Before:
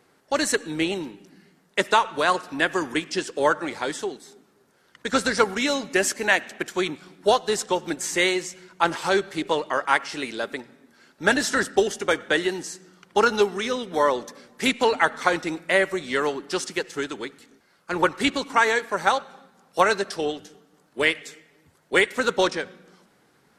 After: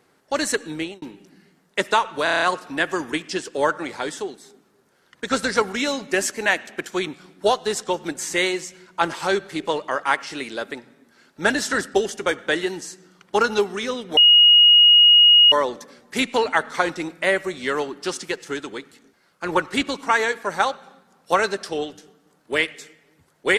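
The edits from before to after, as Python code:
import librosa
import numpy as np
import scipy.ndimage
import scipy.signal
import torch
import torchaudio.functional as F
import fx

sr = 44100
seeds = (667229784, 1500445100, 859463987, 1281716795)

y = fx.edit(x, sr, fx.fade_out_span(start_s=0.71, length_s=0.31),
    fx.stutter(start_s=2.24, slice_s=0.03, count=7),
    fx.insert_tone(at_s=13.99, length_s=1.35, hz=2880.0, db=-8.5), tone=tone)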